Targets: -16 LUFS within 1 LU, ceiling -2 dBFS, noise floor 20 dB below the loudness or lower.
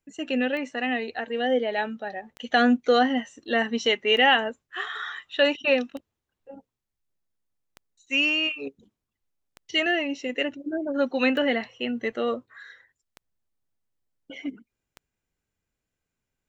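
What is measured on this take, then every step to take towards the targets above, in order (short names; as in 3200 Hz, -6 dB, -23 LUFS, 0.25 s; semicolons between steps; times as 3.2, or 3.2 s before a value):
clicks 9; loudness -24.5 LUFS; peak -8.0 dBFS; loudness target -16.0 LUFS
-> de-click; gain +8.5 dB; limiter -2 dBFS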